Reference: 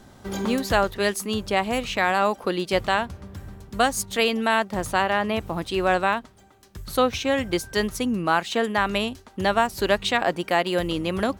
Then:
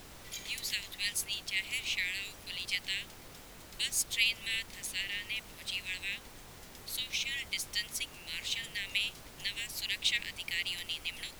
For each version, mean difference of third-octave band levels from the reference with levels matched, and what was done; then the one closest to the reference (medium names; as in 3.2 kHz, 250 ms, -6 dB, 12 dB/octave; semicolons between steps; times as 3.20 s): 11.5 dB: steep high-pass 2 kHz 72 dB/octave; added noise pink -48 dBFS; trim -3 dB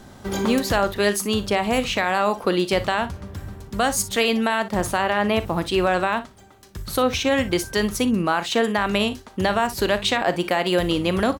3.0 dB: peak limiter -14.5 dBFS, peak gain reduction 7 dB; on a send: early reflections 39 ms -15 dB, 59 ms -16 dB; on the sum: trim +4.5 dB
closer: second